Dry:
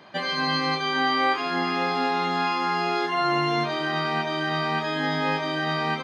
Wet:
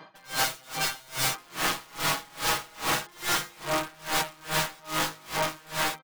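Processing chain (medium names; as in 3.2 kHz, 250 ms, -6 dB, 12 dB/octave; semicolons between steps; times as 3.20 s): 3.54–3.97 s: low-pass 3.6 kHz -> 1.8 kHz; integer overflow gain 21.5 dB; peaking EQ 1.1 kHz +5 dB 0.99 oct; comb 6.3 ms; logarithmic tremolo 2.4 Hz, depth 29 dB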